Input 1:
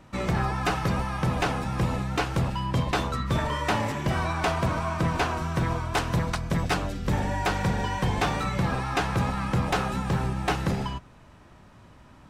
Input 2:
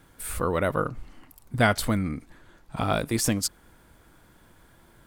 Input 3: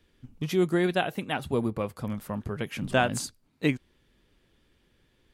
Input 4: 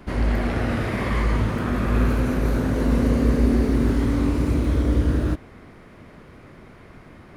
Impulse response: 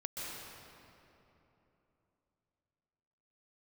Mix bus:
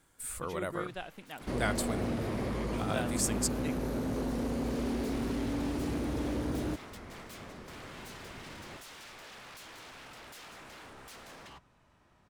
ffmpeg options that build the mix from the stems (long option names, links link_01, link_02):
-filter_complex "[0:a]aeval=exprs='0.0237*(abs(mod(val(0)/0.0237+3,4)-2)-1)':channel_layout=same,adelay=600,volume=-11.5dB[link_01];[1:a]equalizer=frequency=7800:width=1.7:gain=9,volume=-10dB[link_02];[2:a]volume=-14dB,asplit=2[link_03][link_04];[3:a]acrossover=split=120|720|3400[link_05][link_06][link_07][link_08];[link_05]acompressor=threshold=-35dB:ratio=4[link_09];[link_06]acompressor=threshold=-26dB:ratio=4[link_10];[link_07]acompressor=threshold=-52dB:ratio=4[link_11];[link_08]acompressor=threshold=-51dB:ratio=4[link_12];[link_09][link_10][link_11][link_12]amix=inputs=4:normalize=0,volume=25.5dB,asoftclip=hard,volume=-25.5dB,adelay=1400,volume=-0.5dB[link_13];[link_04]apad=whole_len=568646[link_14];[link_01][link_14]sidechaincompress=threshold=-49dB:ratio=5:attack=6:release=1020[link_15];[link_15][link_02][link_03][link_13]amix=inputs=4:normalize=0,lowshelf=frequency=380:gain=-5"